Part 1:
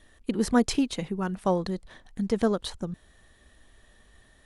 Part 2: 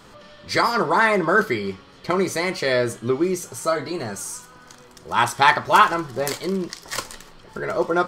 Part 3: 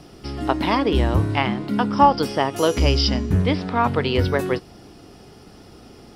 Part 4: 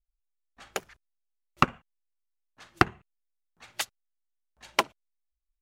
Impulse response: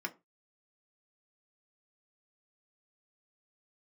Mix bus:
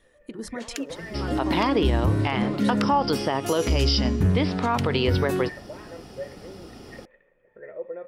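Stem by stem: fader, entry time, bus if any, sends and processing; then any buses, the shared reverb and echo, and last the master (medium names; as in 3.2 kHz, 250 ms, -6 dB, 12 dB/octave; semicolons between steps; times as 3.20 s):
-7.0 dB, 0.00 s, send -7 dB, reverb removal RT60 1.8 s; peak limiter -20 dBFS, peak gain reduction 11 dB
-5.0 dB, 0.00 s, no send, peak limiter -13.5 dBFS, peak gain reduction 11.5 dB; cascade formant filter e
+1.0 dB, 0.90 s, no send, none
-1.0 dB, 0.00 s, no send, steep high-pass 1.5 kHz; peaking EQ 5.1 kHz +8.5 dB 2.5 oct; compression, threshold -30 dBFS, peak gain reduction 15 dB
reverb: on, RT60 0.25 s, pre-delay 3 ms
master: peak limiter -12.5 dBFS, peak gain reduction 10 dB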